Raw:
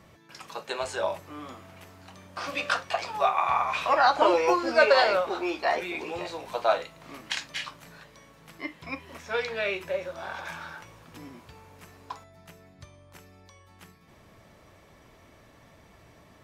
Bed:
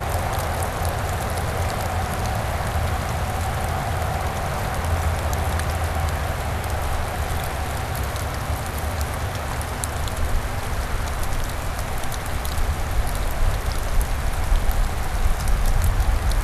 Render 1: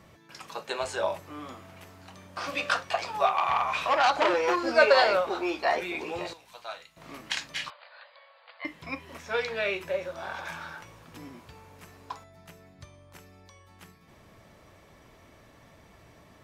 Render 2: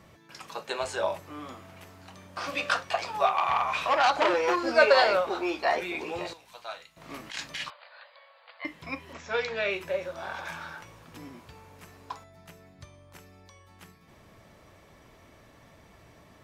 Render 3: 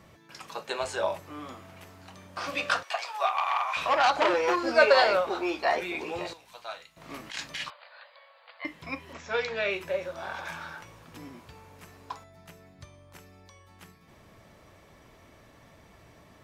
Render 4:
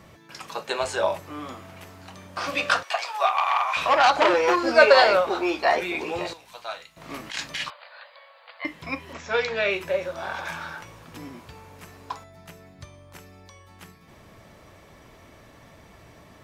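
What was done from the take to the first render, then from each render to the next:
3.26–4.64 core saturation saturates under 2000 Hz; 6.33–6.97 passive tone stack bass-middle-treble 5-5-5; 7.7–8.65 brick-wall FIR band-pass 480–4900 Hz
7.1–7.64 negative-ratio compressor -34 dBFS, ratio -0.5; 9.13–9.71 brick-wall FIR low-pass 7800 Hz
2.83–3.77 Bessel high-pass 790 Hz, order 4
gain +5 dB

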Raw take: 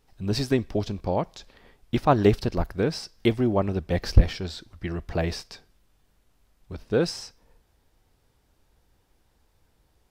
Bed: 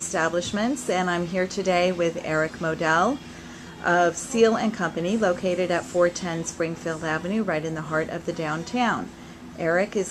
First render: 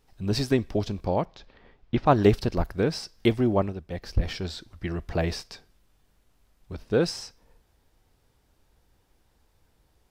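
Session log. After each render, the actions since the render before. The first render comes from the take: 1.25–2.06 air absorption 180 m; 3.61–4.32 dip -9 dB, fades 0.13 s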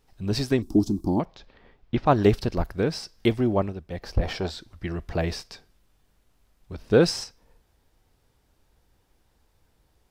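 0.62–1.2 EQ curve 120 Hz 0 dB, 330 Hz +14 dB, 500 Hz -15 dB, 820 Hz -2 dB, 1300 Hz -9 dB, 1900 Hz -27 dB, 5300 Hz +2 dB, 9200 Hz +10 dB; 3.99–4.49 bell 750 Hz +6.5 dB -> +13.5 dB 1.7 oct; 6.84–7.24 gain +5 dB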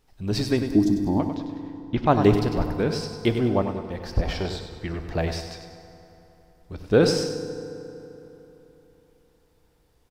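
feedback echo 98 ms, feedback 44%, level -9 dB; FDN reverb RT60 3.5 s, high-frequency decay 0.6×, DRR 10 dB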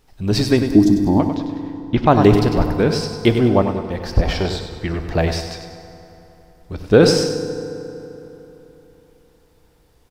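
gain +7.5 dB; limiter -1 dBFS, peak gain reduction 2.5 dB

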